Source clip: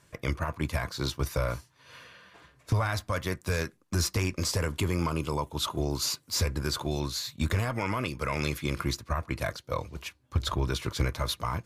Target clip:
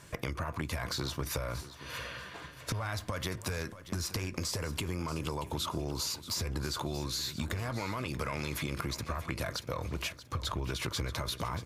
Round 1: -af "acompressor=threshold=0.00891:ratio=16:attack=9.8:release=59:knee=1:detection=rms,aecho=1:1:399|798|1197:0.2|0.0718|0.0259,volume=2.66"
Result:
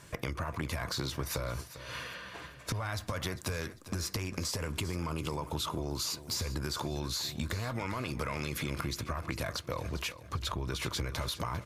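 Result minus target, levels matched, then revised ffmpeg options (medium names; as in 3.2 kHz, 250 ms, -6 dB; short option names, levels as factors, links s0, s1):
echo 233 ms early
-af "acompressor=threshold=0.00891:ratio=16:attack=9.8:release=59:knee=1:detection=rms,aecho=1:1:632|1264|1896:0.2|0.0718|0.0259,volume=2.66"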